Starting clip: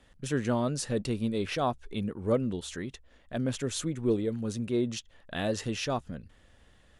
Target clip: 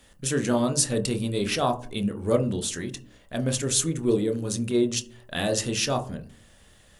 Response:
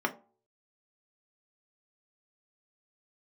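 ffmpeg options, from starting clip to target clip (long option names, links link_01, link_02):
-filter_complex "[0:a]crystalizer=i=3:c=0,asplit=2[link_01][link_02];[1:a]atrim=start_sample=2205,asetrate=22491,aresample=44100,adelay=25[link_03];[link_02][link_03]afir=irnorm=-1:irlink=0,volume=-17dB[link_04];[link_01][link_04]amix=inputs=2:normalize=0,volume=2dB"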